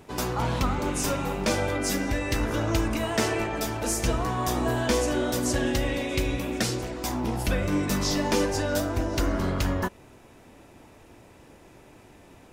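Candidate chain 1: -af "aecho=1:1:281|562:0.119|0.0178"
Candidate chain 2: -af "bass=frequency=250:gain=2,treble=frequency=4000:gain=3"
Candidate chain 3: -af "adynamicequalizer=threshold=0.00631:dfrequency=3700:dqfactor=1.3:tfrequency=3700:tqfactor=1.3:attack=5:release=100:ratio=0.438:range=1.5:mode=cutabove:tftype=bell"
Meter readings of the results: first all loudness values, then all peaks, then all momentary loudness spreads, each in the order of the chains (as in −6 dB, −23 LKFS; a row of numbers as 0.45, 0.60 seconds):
−27.0, −26.0, −27.0 LKFS; −12.0, −11.0, −12.5 dBFS; 4, 3, 4 LU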